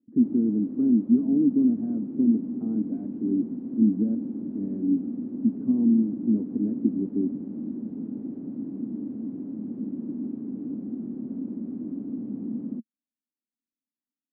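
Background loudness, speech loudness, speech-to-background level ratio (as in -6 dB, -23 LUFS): -34.0 LUFS, -25.0 LUFS, 9.0 dB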